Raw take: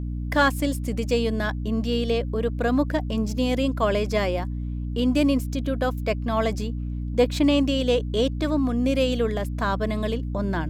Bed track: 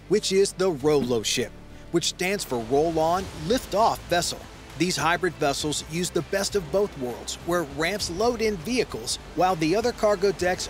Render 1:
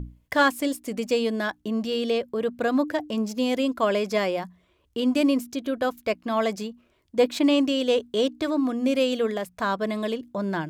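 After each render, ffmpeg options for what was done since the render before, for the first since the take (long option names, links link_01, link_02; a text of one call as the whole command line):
ffmpeg -i in.wav -af "bandreject=frequency=60:width_type=h:width=6,bandreject=frequency=120:width_type=h:width=6,bandreject=frequency=180:width_type=h:width=6,bandreject=frequency=240:width_type=h:width=6,bandreject=frequency=300:width_type=h:width=6" out.wav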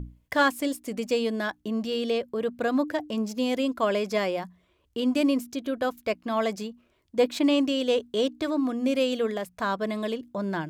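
ffmpeg -i in.wav -af "volume=-2dB" out.wav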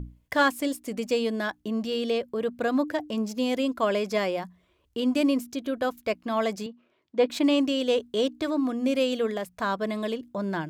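ffmpeg -i in.wav -filter_complex "[0:a]asettb=1/sr,asplit=3[link_01][link_02][link_03];[link_01]atrim=end=6.664[link_04];[link_02]atrim=start=6.66:end=7.3,asetpts=PTS-STARTPTS,afade=type=in:duration=0.004:curve=qsin,afade=type=out:start_time=0.636:duration=0.004:curve=qsin,highpass=200,lowpass=4000[link_05];[link_03]atrim=start=7.296[link_06];[link_04][link_05]acrossfade=duration=0.004:curve1=hsin:curve2=qsin[link_07];[link_07][link_06]acrossfade=duration=0.004:curve1=qsin:curve2=hsin" out.wav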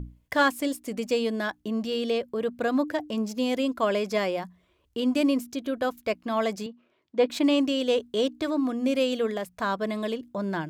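ffmpeg -i in.wav -af anull out.wav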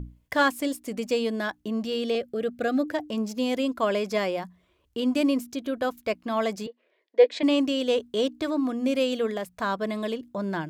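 ffmpeg -i in.wav -filter_complex "[0:a]asettb=1/sr,asplit=3[link_01][link_02][link_03];[link_01]atrim=end=2.154[link_04];[link_02]atrim=start=2.15:end=2.86,asetpts=PTS-STARTPTS,afade=type=in:duration=0.004:curve=qsin,afade=type=out:start_time=0.706:duration=0.004:curve=qsin,asuperstop=centerf=1000:order=12:qfactor=3.1[link_05];[link_03]atrim=start=2.856[link_06];[link_04][link_05]acrossfade=duration=0.004:curve1=hsin:curve2=qsin[link_07];[link_07][link_06]acrossfade=duration=0.004:curve1=qsin:curve2=hsin,asettb=1/sr,asplit=3[link_08][link_09][link_10];[link_08]atrim=end=6.674[link_11];[link_09]atrim=start=6.67:end=7.43,asetpts=PTS-STARTPTS,afade=type=in:duration=0.004:curve=qsin,afade=type=out:start_time=0.756:duration=0.004:curve=qsin,highpass=frequency=400:width=0.5412,highpass=frequency=400:width=1.3066,equalizer=frequency=480:width_type=q:width=4:gain=7,equalizer=frequency=870:width_type=q:width=4:gain=-4,equalizer=frequency=1300:width_type=q:width=4:gain=-10,equalizer=frequency=1900:width_type=q:width=4:gain=9,equalizer=frequency=2700:width_type=q:width=4:gain=-3,equalizer=frequency=6000:width_type=q:width=4:gain=-5,lowpass=frequency=6500:width=0.5412,lowpass=frequency=6500:width=1.3066[link_12];[link_10]atrim=start=7.426[link_13];[link_11][link_12]acrossfade=duration=0.004:curve1=hsin:curve2=qsin[link_14];[link_14][link_13]acrossfade=duration=0.004:curve1=qsin:curve2=hsin" out.wav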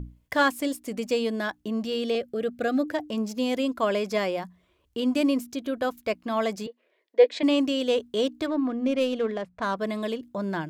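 ffmpeg -i in.wav -filter_complex "[0:a]asettb=1/sr,asplit=3[link_01][link_02][link_03];[link_01]atrim=end=8.464[link_04];[link_02]atrim=start=8.46:end=9.76,asetpts=PTS-STARTPTS,afade=type=in:duration=0.004:curve=qsin,afade=type=out:start_time=1.296:duration=0.004:curve=qsin,adynamicsmooth=sensitivity=3:basefreq=2100[link_05];[link_03]atrim=start=9.756[link_06];[link_04][link_05]acrossfade=duration=0.004:curve1=hsin:curve2=qsin[link_07];[link_07][link_06]acrossfade=duration=0.004:curve1=qsin:curve2=hsin" out.wav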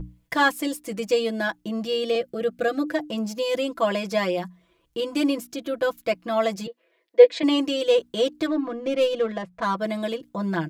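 ffmpeg -i in.wav -af "aecho=1:1:6:0.96" out.wav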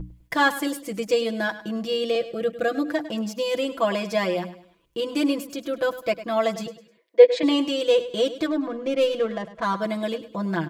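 ffmpeg -i in.wav -af "aecho=1:1:102|204|306:0.188|0.0697|0.0258" out.wav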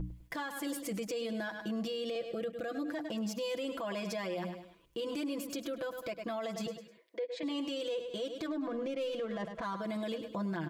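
ffmpeg -i in.wav -af "acompressor=threshold=-29dB:ratio=12,alimiter=level_in=5.5dB:limit=-24dB:level=0:latency=1:release=35,volume=-5.5dB" out.wav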